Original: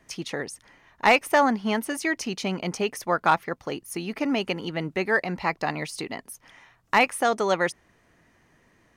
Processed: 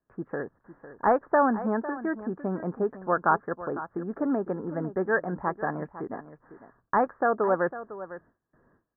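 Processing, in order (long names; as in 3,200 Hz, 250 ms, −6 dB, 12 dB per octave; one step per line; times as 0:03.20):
Chebyshev low-pass with heavy ripple 1,700 Hz, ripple 3 dB
on a send: single-tap delay 503 ms −14 dB
on the sum: noise gate with hold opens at −54 dBFS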